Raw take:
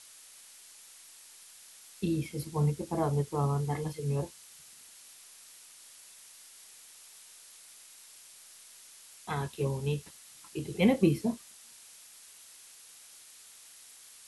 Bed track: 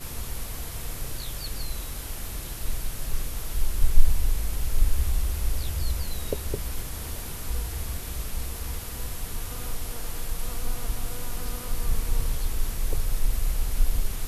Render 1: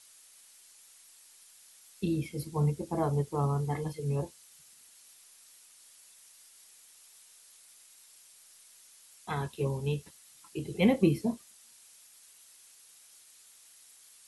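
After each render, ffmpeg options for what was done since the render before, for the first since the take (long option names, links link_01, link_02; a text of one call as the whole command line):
ffmpeg -i in.wav -af "afftdn=noise_reduction=6:noise_floor=-54" out.wav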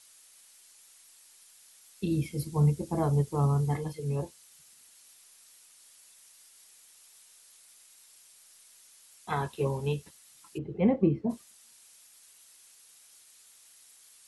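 ffmpeg -i in.wav -filter_complex "[0:a]asettb=1/sr,asplit=3[link_01][link_02][link_03];[link_01]atrim=end=2.114[link_04];[link_02]atrim=start=2.11:end=3.77,asetpts=PTS-STARTPTS,afade=type=in:duration=0.004:curve=qsin,afade=type=out:start_time=1.656:duration=0.004:curve=qsin,bass=frequency=250:gain=5,treble=frequency=4000:gain=3[link_05];[link_03]atrim=start=3.766[link_06];[link_04][link_05]acrossfade=duration=0.004:curve1=hsin:curve2=qsin[link_07];[link_07][link_06]acrossfade=duration=0.004:curve1=qsin:curve2=hsin,asettb=1/sr,asplit=3[link_08][link_09][link_10];[link_08]atrim=end=9.324[link_11];[link_09]atrim=start=9.32:end=9.93,asetpts=PTS-STARTPTS,afade=type=in:duration=0.004:curve=qsin,afade=type=out:start_time=0.606:duration=0.004:curve=qsin,equalizer=frequency=910:width_type=o:width=2.1:gain=6[link_12];[link_10]atrim=start=9.926[link_13];[link_11][link_12]acrossfade=duration=0.004:curve1=hsin:curve2=qsin[link_14];[link_14][link_13]acrossfade=duration=0.004:curve1=qsin:curve2=hsin,asplit=3[link_15][link_16][link_17];[link_15]afade=type=out:start_time=10.57:duration=0.02[link_18];[link_16]lowpass=1300,afade=type=in:start_time=10.57:duration=0.02,afade=type=out:start_time=11.29:duration=0.02[link_19];[link_17]afade=type=in:start_time=11.29:duration=0.02[link_20];[link_18][link_19][link_20]amix=inputs=3:normalize=0" out.wav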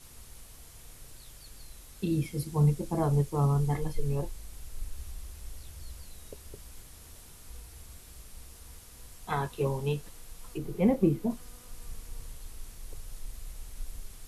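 ffmpeg -i in.wav -i bed.wav -filter_complex "[1:a]volume=-17dB[link_01];[0:a][link_01]amix=inputs=2:normalize=0" out.wav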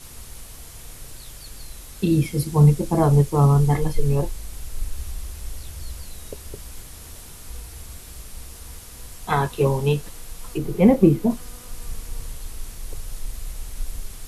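ffmpeg -i in.wav -af "volume=10dB" out.wav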